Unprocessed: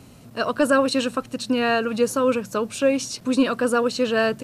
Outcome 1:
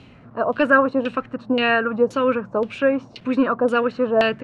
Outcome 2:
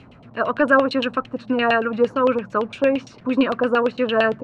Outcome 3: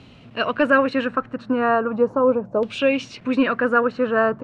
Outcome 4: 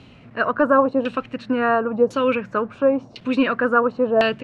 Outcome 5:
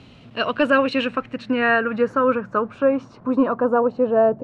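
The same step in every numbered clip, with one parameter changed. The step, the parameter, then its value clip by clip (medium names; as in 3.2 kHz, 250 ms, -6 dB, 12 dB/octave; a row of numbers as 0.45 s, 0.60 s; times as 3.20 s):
LFO low-pass, rate: 1.9 Hz, 8.8 Hz, 0.38 Hz, 0.95 Hz, 0.22 Hz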